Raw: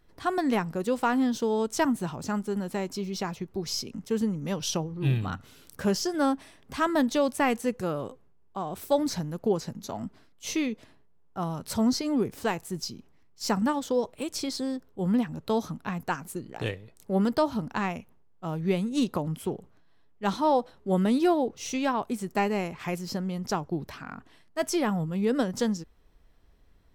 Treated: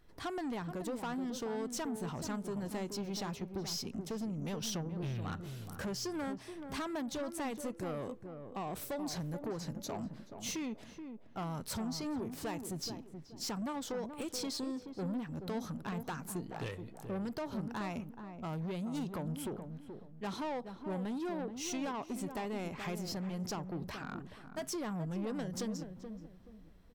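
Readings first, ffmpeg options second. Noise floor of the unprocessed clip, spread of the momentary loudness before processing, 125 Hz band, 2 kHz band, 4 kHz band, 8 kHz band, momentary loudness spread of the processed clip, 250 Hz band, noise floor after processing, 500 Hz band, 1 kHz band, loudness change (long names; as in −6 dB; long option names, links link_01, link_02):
−58 dBFS, 11 LU, −8.0 dB, −11.0 dB, −7.5 dB, −6.0 dB, 7 LU, −10.5 dB, −54 dBFS, −12.0 dB, −12.0 dB, −11.0 dB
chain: -filter_complex "[0:a]acompressor=threshold=-30dB:ratio=6,asoftclip=type=tanh:threshold=-33.5dB,asplit=2[link_01][link_02];[link_02]adelay=428,lowpass=frequency=910:poles=1,volume=-7dB,asplit=2[link_03][link_04];[link_04]adelay=428,lowpass=frequency=910:poles=1,volume=0.32,asplit=2[link_05][link_06];[link_06]adelay=428,lowpass=frequency=910:poles=1,volume=0.32,asplit=2[link_07][link_08];[link_08]adelay=428,lowpass=frequency=910:poles=1,volume=0.32[link_09];[link_01][link_03][link_05][link_07][link_09]amix=inputs=5:normalize=0,volume=-1dB"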